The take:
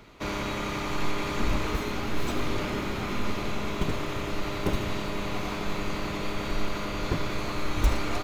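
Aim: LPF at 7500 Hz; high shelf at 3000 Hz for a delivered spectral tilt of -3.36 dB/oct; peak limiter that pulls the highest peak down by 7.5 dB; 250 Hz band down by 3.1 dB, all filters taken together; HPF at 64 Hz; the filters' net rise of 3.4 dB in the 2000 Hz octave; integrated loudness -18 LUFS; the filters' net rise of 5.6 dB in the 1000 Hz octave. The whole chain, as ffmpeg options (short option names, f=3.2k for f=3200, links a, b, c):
-af "highpass=64,lowpass=7.5k,equalizer=f=250:t=o:g=-4.5,equalizer=f=1k:t=o:g=6.5,equalizer=f=2k:t=o:g=4.5,highshelf=f=3k:g=-5.5,volume=13dB,alimiter=limit=-8.5dB:level=0:latency=1"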